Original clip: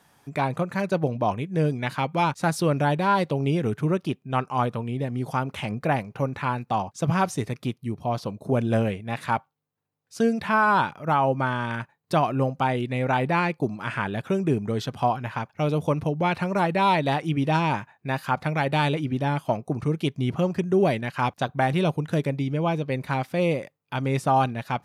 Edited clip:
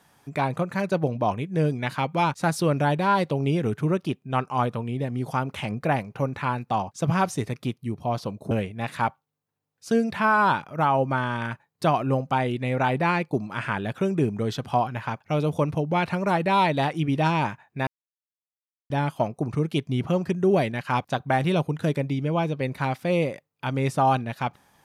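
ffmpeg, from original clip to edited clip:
ffmpeg -i in.wav -filter_complex "[0:a]asplit=4[link_01][link_02][link_03][link_04];[link_01]atrim=end=8.512[link_05];[link_02]atrim=start=8.798:end=18.16,asetpts=PTS-STARTPTS,afade=type=out:start_time=9.358:duration=0.004:curve=hsin[link_06];[link_03]atrim=start=18.16:end=19.19,asetpts=PTS-STARTPTS,volume=0[link_07];[link_04]atrim=start=19.19,asetpts=PTS-STARTPTS,afade=type=in:duration=0.004:curve=hsin[link_08];[link_06][link_07][link_08]concat=n=3:v=0:a=1[link_09];[link_05][link_09]acrossfade=duration=0.004:curve1=hsin:curve2=hsin" out.wav

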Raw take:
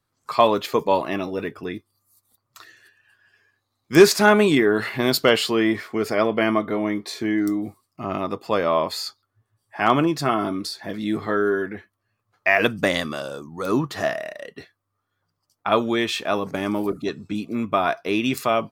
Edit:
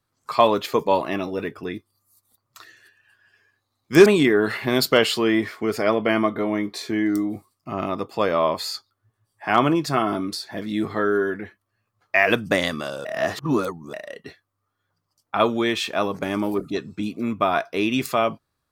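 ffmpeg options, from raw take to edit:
ffmpeg -i in.wav -filter_complex "[0:a]asplit=4[link_01][link_02][link_03][link_04];[link_01]atrim=end=4.062[link_05];[link_02]atrim=start=4.378:end=13.372[link_06];[link_03]atrim=start=13.368:end=14.252,asetpts=PTS-STARTPTS,areverse[link_07];[link_04]atrim=start=14.248[link_08];[link_05][link_06]acrossfade=duration=0.004:curve1=hsin:curve2=hsin[link_09];[link_09][link_07]acrossfade=duration=0.004:curve1=hsin:curve2=hsin[link_10];[link_10][link_08]acrossfade=duration=0.004:curve1=hsin:curve2=hsin" out.wav

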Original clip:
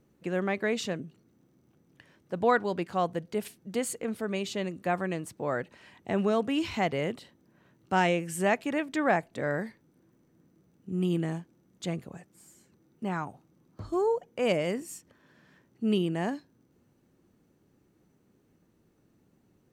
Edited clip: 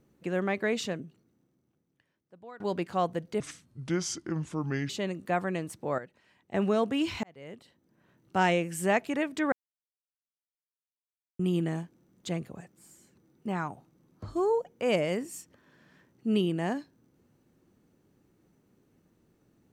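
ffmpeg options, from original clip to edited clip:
ffmpeg -i in.wav -filter_complex "[0:a]asplit=9[link_01][link_02][link_03][link_04][link_05][link_06][link_07][link_08][link_09];[link_01]atrim=end=2.6,asetpts=PTS-STARTPTS,afade=type=out:start_time=0.82:duration=1.78:curve=qua:silence=0.0668344[link_10];[link_02]atrim=start=2.6:end=3.404,asetpts=PTS-STARTPTS,afade=type=in:duration=0.004:curve=hsin:silence=0.0668344[link_11];[link_03]atrim=start=3.4:end=4.46,asetpts=PTS-STARTPTS,asetrate=31311,aresample=44100,atrim=end_sample=65839,asetpts=PTS-STARTPTS[link_12];[link_04]atrim=start=4.456:end=5.552[link_13];[link_05]atrim=start=5.548:end=6.112,asetpts=PTS-STARTPTS,volume=-11dB[link_14];[link_06]atrim=start=6.108:end=6.8,asetpts=PTS-STARTPTS,afade=type=out:start_time=0.688:duration=0.004:curve=hsin[link_15];[link_07]atrim=start=6.8:end=9.09,asetpts=PTS-STARTPTS,afade=type=in:duration=1.22,afade=type=out:start_time=2.286:duration=0.004:curve=hsin[link_16];[link_08]atrim=start=9.09:end=10.96,asetpts=PTS-STARTPTS,volume=0[link_17];[link_09]atrim=start=10.96,asetpts=PTS-STARTPTS,afade=type=in:duration=0.004:curve=hsin[link_18];[link_10][link_11]concat=n=2:v=0:a=1[link_19];[link_19][link_12]acrossfade=duration=0.004:curve1=hsin:curve2=hsin[link_20];[link_20][link_13]acrossfade=duration=0.004:curve1=hsin:curve2=hsin[link_21];[link_21][link_14]acrossfade=duration=0.004:curve1=hsin:curve2=hsin[link_22];[link_15][link_16][link_17][link_18]concat=n=4:v=0:a=1[link_23];[link_22][link_23]acrossfade=duration=0.004:curve1=hsin:curve2=hsin" out.wav

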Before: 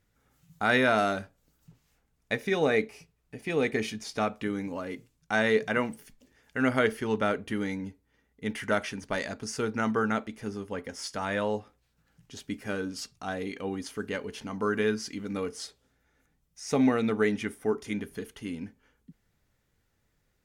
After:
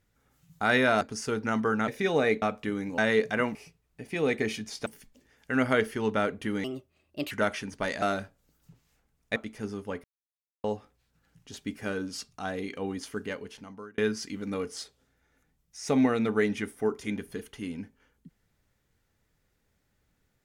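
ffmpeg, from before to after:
ffmpeg -i in.wav -filter_complex "[0:a]asplit=14[link_01][link_02][link_03][link_04][link_05][link_06][link_07][link_08][link_09][link_10][link_11][link_12][link_13][link_14];[link_01]atrim=end=1.012[link_15];[link_02]atrim=start=9.318:end=10.192[link_16];[link_03]atrim=start=2.348:end=2.892[link_17];[link_04]atrim=start=4.198:end=4.762[link_18];[link_05]atrim=start=5.348:end=5.922[link_19];[link_06]atrim=start=2.888:end=4.202[link_20];[link_07]atrim=start=5.918:end=7.704[link_21];[link_08]atrim=start=7.7:end=8.61,asetpts=PTS-STARTPTS,asetrate=59976,aresample=44100,atrim=end_sample=29508,asetpts=PTS-STARTPTS[link_22];[link_09]atrim=start=8.606:end=9.322[link_23];[link_10]atrim=start=1.008:end=2.352[link_24];[link_11]atrim=start=10.188:end=10.87,asetpts=PTS-STARTPTS,afade=type=out:start_time=0.678:duration=0.004:curve=hsin[link_25];[link_12]atrim=start=10.87:end=11.47,asetpts=PTS-STARTPTS,volume=0[link_26];[link_13]atrim=start=11.47:end=14.81,asetpts=PTS-STARTPTS,afade=type=in:duration=0.004:curve=hsin,afade=type=out:start_time=2.5:duration=0.84[link_27];[link_14]atrim=start=14.81,asetpts=PTS-STARTPTS,afade=type=in:duration=0.004:curve=hsin[link_28];[link_15][link_16]acrossfade=duration=0.004:curve1=hsin:curve2=hsin[link_29];[link_29][link_17]acrossfade=duration=0.004:curve1=hsin:curve2=hsin[link_30];[link_30][link_18]acrossfade=duration=0.004:curve1=hsin:curve2=hsin[link_31];[link_31][link_19]acrossfade=duration=0.004:curve1=hsin:curve2=hsin[link_32];[link_32][link_20]acrossfade=duration=0.004:curve1=hsin:curve2=hsin[link_33];[link_33][link_21]acrossfade=duration=0.004:curve1=hsin:curve2=hsin[link_34];[link_34][link_22]acrossfade=duration=0.004:curve1=hsin:curve2=hsin[link_35];[link_35][link_23]acrossfade=duration=0.004:curve1=hsin:curve2=hsin[link_36];[link_36][link_24]acrossfade=duration=0.004:curve1=hsin:curve2=hsin[link_37];[link_25][link_26][link_27][link_28]concat=n=4:v=0:a=1[link_38];[link_37][link_38]acrossfade=duration=0.004:curve1=hsin:curve2=hsin" out.wav

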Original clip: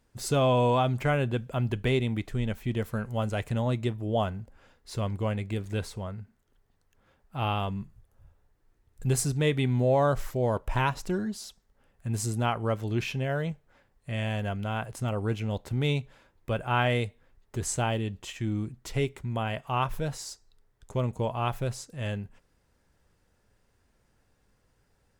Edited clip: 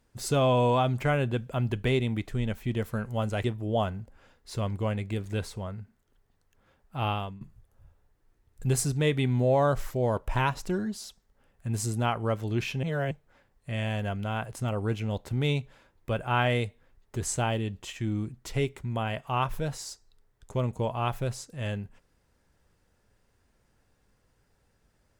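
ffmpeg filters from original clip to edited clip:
ffmpeg -i in.wav -filter_complex "[0:a]asplit=5[link_01][link_02][link_03][link_04][link_05];[link_01]atrim=end=3.442[link_06];[link_02]atrim=start=3.838:end=7.81,asetpts=PTS-STARTPTS,afade=type=out:start_time=3.652:duration=0.32:silence=0.149624[link_07];[link_03]atrim=start=7.81:end=13.232,asetpts=PTS-STARTPTS,afade=type=in:duration=0.004:curve=hsin:silence=0.149624[link_08];[link_04]atrim=start=13.228:end=13.512,asetpts=PTS-STARTPTS,areverse[link_09];[link_05]atrim=start=13.508[link_10];[link_07][link_08]concat=n=2:v=0:a=1[link_11];[link_06][link_11]acrossfade=duration=0.004:curve1=hsin:curve2=hsin[link_12];[link_12][link_09]acrossfade=duration=0.004:curve1=hsin:curve2=hsin[link_13];[link_13][link_10]acrossfade=duration=0.004:curve1=hsin:curve2=hsin" out.wav

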